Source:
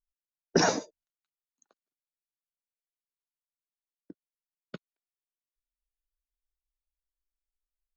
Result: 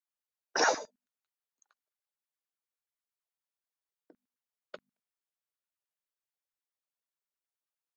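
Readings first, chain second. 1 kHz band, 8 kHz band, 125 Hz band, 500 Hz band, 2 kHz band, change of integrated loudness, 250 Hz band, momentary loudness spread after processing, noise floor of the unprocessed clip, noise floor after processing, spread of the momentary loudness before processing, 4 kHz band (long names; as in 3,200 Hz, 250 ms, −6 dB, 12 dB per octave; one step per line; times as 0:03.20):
+0.5 dB, can't be measured, −25.5 dB, −4.5 dB, +1.5 dB, −2.5 dB, −13.5 dB, 9 LU, below −85 dBFS, below −85 dBFS, 7 LU, −2.5 dB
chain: mains-hum notches 50/100/150/200/250 Hz
auto-filter high-pass saw down 9.4 Hz 340–1,700 Hz
level −2.5 dB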